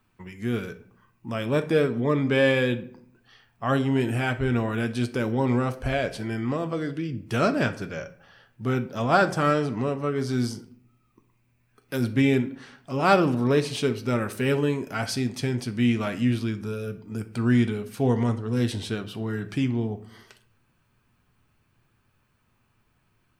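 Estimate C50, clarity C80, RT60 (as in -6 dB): 15.0 dB, 19.0 dB, 0.65 s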